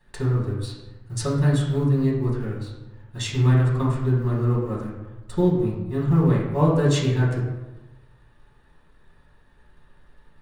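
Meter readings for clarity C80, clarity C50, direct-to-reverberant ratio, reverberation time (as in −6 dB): 5.5 dB, 3.0 dB, −6.5 dB, 1.1 s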